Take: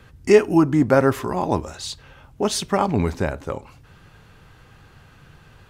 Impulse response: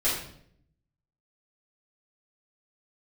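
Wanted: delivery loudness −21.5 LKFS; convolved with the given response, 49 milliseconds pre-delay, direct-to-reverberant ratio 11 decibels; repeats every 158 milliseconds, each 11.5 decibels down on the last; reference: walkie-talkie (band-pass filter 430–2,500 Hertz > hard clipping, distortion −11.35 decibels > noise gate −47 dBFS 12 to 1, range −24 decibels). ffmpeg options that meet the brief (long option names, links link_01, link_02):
-filter_complex "[0:a]aecho=1:1:158|316|474:0.266|0.0718|0.0194,asplit=2[link_01][link_02];[1:a]atrim=start_sample=2205,adelay=49[link_03];[link_02][link_03]afir=irnorm=-1:irlink=0,volume=-22dB[link_04];[link_01][link_04]amix=inputs=2:normalize=0,highpass=430,lowpass=2500,asoftclip=type=hard:threshold=-14.5dB,agate=range=-24dB:threshold=-47dB:ratio=12,volume=3.5dB"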